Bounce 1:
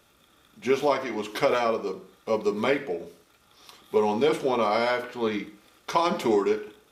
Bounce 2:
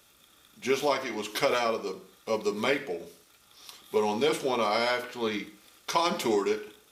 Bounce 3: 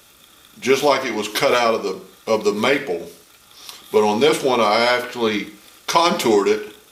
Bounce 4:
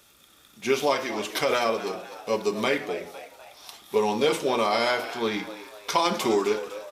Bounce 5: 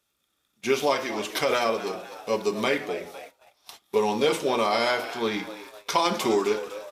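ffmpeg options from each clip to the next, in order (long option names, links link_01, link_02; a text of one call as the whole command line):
ffmpeg -i in.wav -af "highshelf=frequency=2600:gain=10,volume=-4dB" out.wav
ffmpeg -i in.wav -af "alimiter=level_in=12dB:limit=-1dB:release=50:level=0:latency=1,volume=-1.5dB" out.wav
ffmpeg -i in.wav -filter_complex "[0:a]asplit=6[link_01][link_02][link_03][link_04][link_05][link_06];[link_02]adelay=252,afreqshift=97,volume=-14dB[link_07];[link_03]adelay=504,afreqshift=194,volume=-20dB[link_08];[link_04]adelay=756,afreqshift=291,volume=-26dB[link_09];[link_05]adelay=1008,afreqshift=388,volume=-32.1dB[link_10];[link_06]adelay=1260,afreqshift=485,volume=-38.1dB[link_11];[link_01][link_07][link_08][link_09][link_10][link_11]amix=inputs=6:normalize=0,volume=-7.5dB" out.wav
ffmpeg -i in.wav -af "agate=range=-18dB:threshold=-44dB:ratio=16:detection=peak" out.wav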